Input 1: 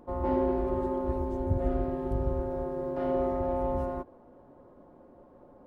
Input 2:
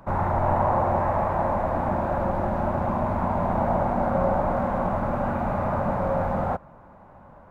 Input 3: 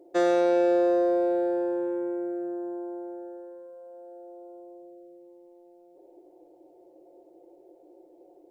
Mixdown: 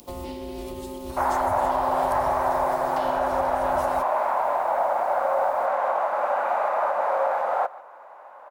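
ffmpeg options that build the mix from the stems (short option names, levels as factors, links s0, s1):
-filter_complex "[0:a]acrossover=split=110|390[s0][s1][s2];[s0]acompressor=threshold=0.01:ratio=4[s3];[s1]acompressor=threshold=0.0178:ratio=4[s4];[s2]acompressor=threshold=0.0112:ratio=4[s5];[s3][s4][s5]amix=inputs=3:normalize=0,aexciter=amount=8.5:drive=6.3:freq=2400,volume=1.33[s6];[1:a]highpass=f=550:w=0.5412,highpass=f=550:w=1.3066,alimiter=limit=0.0944:level=0:latency=1:release=270,acontrast=38,adelay=1100,volume=1.12,asplit=2[s7][s8];[s8]volume=0.0944[s9];[s6]highshelf=f=2500:g=10,alimiter=level_in=1.19:limit=0.0631:level=0:latency=1:release=228,volume=0.841,volume=1[s10];[s9]aecho=0:1:145:1[s11];[s7][s10][s11]amix=inputs=3:normalize=0"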